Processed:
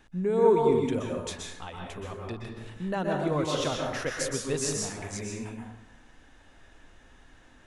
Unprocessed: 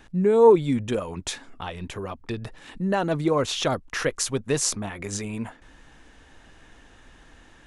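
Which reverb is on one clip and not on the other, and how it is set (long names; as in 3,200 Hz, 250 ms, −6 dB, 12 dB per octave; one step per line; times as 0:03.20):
dense smooth reverb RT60 0.88 s, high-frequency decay 0.6×, pre-delay 110 ms, DRR −0.5 dB
level −7.5 dB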